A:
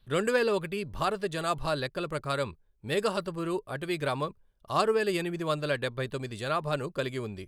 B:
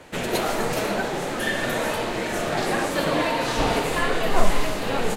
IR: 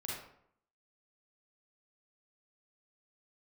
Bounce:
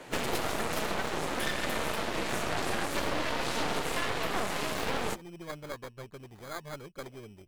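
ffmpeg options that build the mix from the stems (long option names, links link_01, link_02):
-filter_complex "[0:a]acrusher=samples=16:mix=1:aa=0.000001,adynamicequalizer=threshold=0.00447:dfrequency=4500:dqfactor=0.7:tfrequency=4500:tqfactor=0.7:attack=5:release=100:ratio=0.375:range=2.5:mode=cutabove:tftype=highshelf,volume=-11.5dB[link_01];[1:a]highpass=frequency=150:width=0.5412,highpass=frequency=150:width=1.3066,volume=-1dB[link_02];[link_01][link_02]amix=inputs=2:normalize=0,aeval=exprs='0.299*(cos(1*acos(clip(val(0)/0.299,-1,1)))-cos(1*PI/2))+0.106*(cos(6*acos(clip(val(0)/0.299,-1,1)))-cos(6*PI/2))':channel_layout=same,acompressor=threshold=-28dB:ratio=4"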